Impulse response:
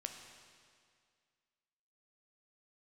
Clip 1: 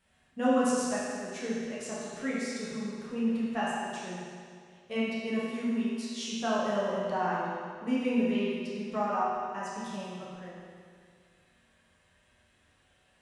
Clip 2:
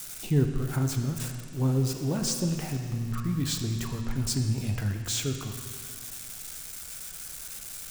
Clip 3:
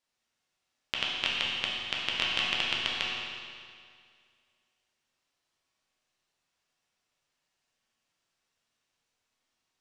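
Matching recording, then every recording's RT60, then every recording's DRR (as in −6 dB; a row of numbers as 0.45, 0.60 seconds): 2; 2.1, 2.1, 2.1 seconds; −9.0, 4.0, −5.0 decibels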